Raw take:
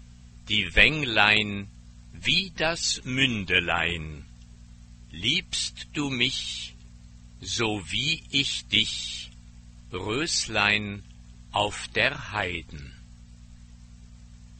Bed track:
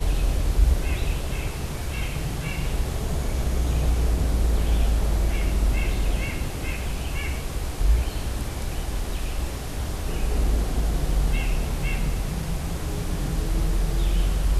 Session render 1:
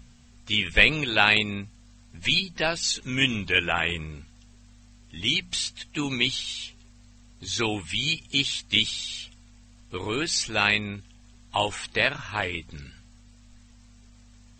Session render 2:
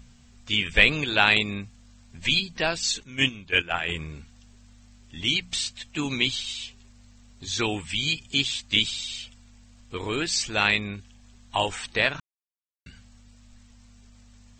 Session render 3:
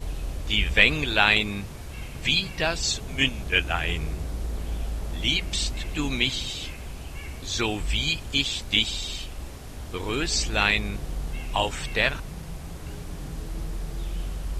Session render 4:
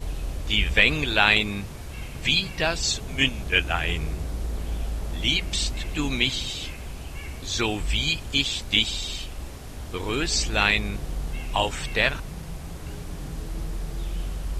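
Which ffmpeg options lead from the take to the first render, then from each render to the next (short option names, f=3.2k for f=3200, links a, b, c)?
-af "bandreject=f=60:t=h:w=4,bandreject=f=120:t=h:w=4,bandreject=f=180:t=h:w=4"
-filter_complex "[0:a]asplit=3[a][b][c];[a]afade=t=out:st=3.02:d=0.02[d];[b]agate=range=-12dB:threshold=-26dB:ratio=16:release=100:detection=peak,afade=t=in:st=3.02:d=0.02,afade=t=out:st=3.87:d=0.02[e];[c]afade=t=in:st=3.87:d=0.02[f];[d][e][f]amix=inputs=3:normalize=0,asplit=3[g][h][i];[g]atrim=end=12.2,asetpts=PTS-STARTPTS,afade=t=out:st=12.196:d=0.004:c=hsin[j];[h]atrim=start=12.2:end=12.86,asetpts=PTS-STARTPTS,volume=0[k];[i]atrim=start=12.86,asetpts=PTS-STARTPTS,afade=t=in:d=0.004:c=hsin[l];[j][k][l]concat=n=3:v=0:a=1"
-filter_complex "[1:a]volume=-9dB[a];[0:a][a]amix=inputs=2:normalize=0"
-af "volume=1dB,alimiter=limit=-3dB:level=0:latency=1"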